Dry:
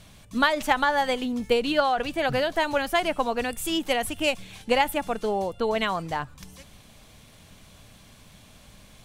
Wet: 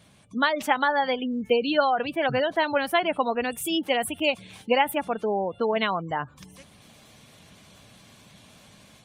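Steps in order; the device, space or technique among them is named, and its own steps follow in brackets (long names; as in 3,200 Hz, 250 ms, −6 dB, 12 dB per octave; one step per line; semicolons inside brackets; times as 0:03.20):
noise-suppressed video call (high-pass filter 110 Hz 12 dB per octave; gate on every frequency bin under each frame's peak −25 dB strong; automatic gain control gain up to 3.5 dB; level −2.5 dB; Opus 32 kbit/s 48,000 Hz)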